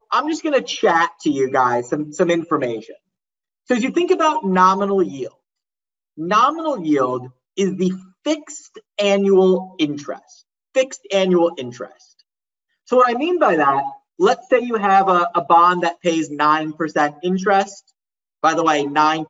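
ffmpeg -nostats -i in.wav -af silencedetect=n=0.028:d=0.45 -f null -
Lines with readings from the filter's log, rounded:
silence_start: 2.91
silence_end: 3.70 | silence_duration: 0.78
silence_start: 5.28
silence_end: 6.18 | silence_duration: 0.90
silence_start: 10.16
silence_end: 10.75 | silence_duration: 0.59
silence_start: 11.87
silence_end: 12.92 | silence_duration: 1.05
silence_start: 17.79
silence_end: 18.44 | silence_duration: 0.65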